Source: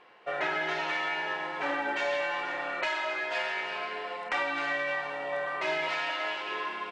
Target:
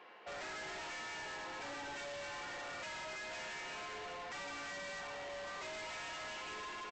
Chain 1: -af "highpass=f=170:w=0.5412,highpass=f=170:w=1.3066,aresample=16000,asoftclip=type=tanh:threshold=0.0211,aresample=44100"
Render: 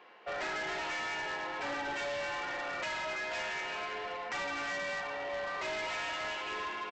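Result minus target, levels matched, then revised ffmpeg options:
saturation: distortion -5 dB
-af "highpass=f=170:w=0.5412,highpass=f=170:w=1.3066,aresample=16000,asoftclip=type=tanh:threshold=0.00631,aresample=44100"

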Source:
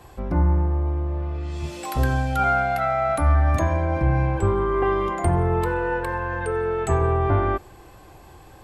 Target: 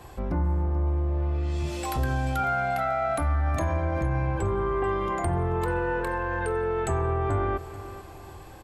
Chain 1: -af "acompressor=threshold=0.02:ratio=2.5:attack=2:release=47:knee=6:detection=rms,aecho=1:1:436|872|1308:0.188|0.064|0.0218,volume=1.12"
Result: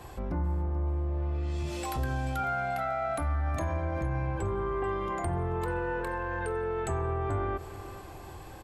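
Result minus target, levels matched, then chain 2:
compression: peak gain reduction +5 dB
-af "acompressor=threshold=0.0501:ratio=2.5:attack=2:release=47:knee=6:detection=rms,aecho=1:1:436|872|1308:0.188|0.064|0.0218,volume=1.12"

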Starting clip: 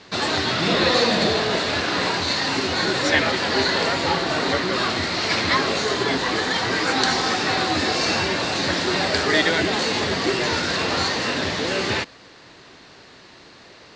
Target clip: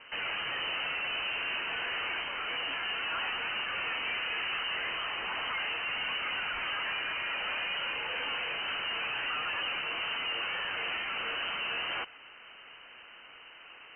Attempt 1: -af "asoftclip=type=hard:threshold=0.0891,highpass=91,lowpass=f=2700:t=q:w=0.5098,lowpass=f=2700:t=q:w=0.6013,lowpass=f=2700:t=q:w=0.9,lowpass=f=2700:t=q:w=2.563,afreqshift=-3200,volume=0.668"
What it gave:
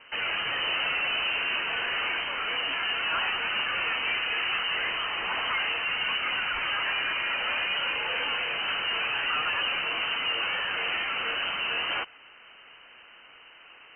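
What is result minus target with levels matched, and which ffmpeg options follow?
hard clipper: distortion -4 dB
-af "asoftclip=type=hard:threshold=0.0398,highpass=91,lowpass=f=2700:t=q:w=0.5098,lowpass=f=2700:t=q:w=0.6013,lowpass=f=2700:t=q:w=0.9,lowpass=f=2700:t=q:w=2.563,afreqshift=-3200,volume=0.668"

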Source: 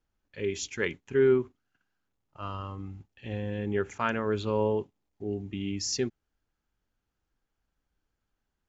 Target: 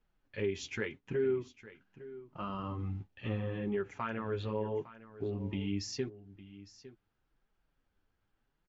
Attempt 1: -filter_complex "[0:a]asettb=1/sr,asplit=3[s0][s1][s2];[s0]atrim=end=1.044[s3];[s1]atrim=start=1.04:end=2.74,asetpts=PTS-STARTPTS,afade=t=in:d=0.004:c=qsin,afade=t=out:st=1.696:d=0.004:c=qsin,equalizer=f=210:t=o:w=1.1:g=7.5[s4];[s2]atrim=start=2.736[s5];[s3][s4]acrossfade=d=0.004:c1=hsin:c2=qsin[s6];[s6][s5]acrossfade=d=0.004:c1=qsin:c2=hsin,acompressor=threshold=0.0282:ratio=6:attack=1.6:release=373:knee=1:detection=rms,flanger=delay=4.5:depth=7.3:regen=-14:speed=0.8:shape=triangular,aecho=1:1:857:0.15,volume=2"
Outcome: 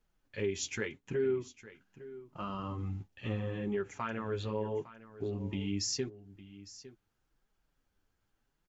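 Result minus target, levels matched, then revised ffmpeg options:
4 kHz band +4.0 dB
-filter_complex "[0:a]asettb=1/sr,asplit=3[s0][s1][s2];[s0]atrim=end=1.044[s3];[s1]atrim=start=1.04:end=2.74,asetpts=PTS-STARTPTS,afade=t=in:d=0.004:c=qsin,afade=t=out:st=1.696:d=0.004:c=qsin,equalizer=f=210:t=o:w=1.1:g=7.5[s4];[s2]atrim=start=2.736[s5];[s3][s4]acrossfade=d=0.004:c1=hsin:c2=qsin[s6];[s6][s5]acrossfade=d=0.004:c1=qsin:c2=hsin,acompressor=threshold=0.0282:ratio=6:attack=1.6:release=373:knee=1:detection=rms,lowpass=3900,flanger=delay=4.5:depth=7.3:regen=-14:speed=0.8:shape=triangular,aecho=1:1:857:0.15,volume=2"

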